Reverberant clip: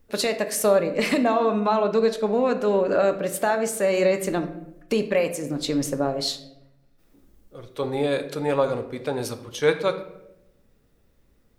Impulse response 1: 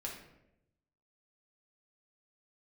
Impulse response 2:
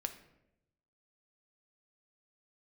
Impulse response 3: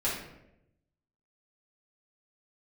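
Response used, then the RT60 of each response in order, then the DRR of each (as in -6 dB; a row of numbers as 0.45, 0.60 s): 2; 0.85, 0.85, 0.85 s; -3.0, 7.0, -9.0 dB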